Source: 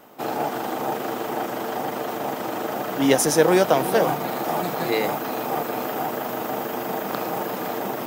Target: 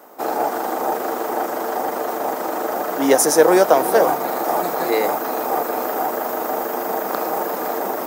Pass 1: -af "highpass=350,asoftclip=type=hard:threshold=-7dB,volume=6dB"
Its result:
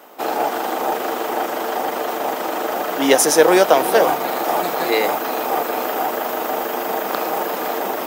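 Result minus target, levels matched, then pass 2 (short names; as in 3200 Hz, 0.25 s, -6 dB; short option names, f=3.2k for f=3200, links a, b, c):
4000 Hz band +5.5 dB
-af "highpass=350,equalizer=f=3k:w=1.3:g=-10.5,asoftclip=type=hard:threshold=-7dB,volume=6dB"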